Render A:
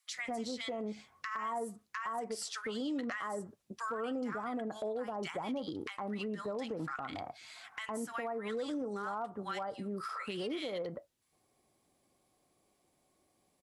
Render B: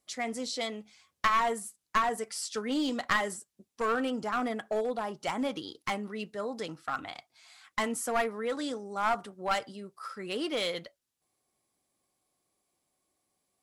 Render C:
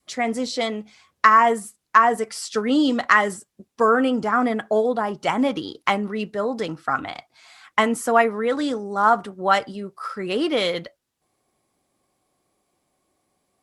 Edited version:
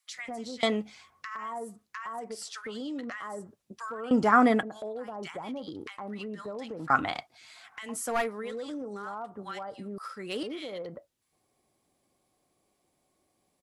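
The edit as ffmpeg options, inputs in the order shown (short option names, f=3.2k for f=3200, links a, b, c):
-filter_complex "[2:a]asplit=3[a][b][c];[1:a]asplit=2[d][e];[0:a]asplit=6[f][g][h][i][j][k];[f]atrim=end=0.632[l];[a]atrim=start=0.628:end=1.102[m];[g]atrim=start=1.098:end=4.112[n];[b]atrim=start=4.108:end=4.632[o];[h]atrim=start=4.628:end=6.902[p];[c]atrim=start=6.898:end=7.352[q];[i]atrim=start=7.348:end=7.98[r];[d]atrim=start=7.82:end=8.55[s];[j]atrim=start=8.39:end=9.982[t];[e]atrim=start=9.978:end=10.432[u];[k]atrim=start=10.428[v];[l][m]acrossfade=d=0.004:c1=hsin:c2=hsin[w];[w][n]acrossfade=d=0.004:c1=hsin:c2=hsin[x];[x][o]acrossfade=d=0.004:c1=hsin:c2=hsin[y];[y][p]acrossfade=d=0.004:c1=hsin:c2=hsin[z];[z][q]acrossfade=d=0.004:c1=hsin:c2=hsin[aa];[aa][r]acrossfade=d=0.004:c1=hsin:c2=hsin[ab];[ab][s]acrossfade=d=0.16:c1=tri:c2=tri[ac];[ac][t]acrossfade=d=0.16:c1=tri:c2=tri[ad];[ad][u]acrossfade=d=0.004:c1=hsin:c2=hsin[ae];[ae][v]acrossfade=d=0.004:c1=hsin:c2=hsin"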